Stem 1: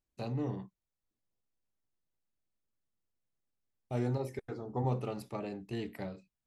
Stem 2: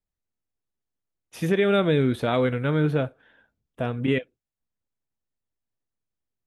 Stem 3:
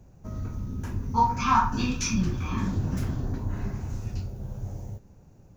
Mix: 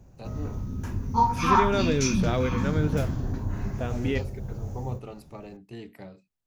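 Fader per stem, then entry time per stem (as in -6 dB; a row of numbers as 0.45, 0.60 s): -3.0, -5.0, +0.5 dB; 0.00, 0.00, 0.00 s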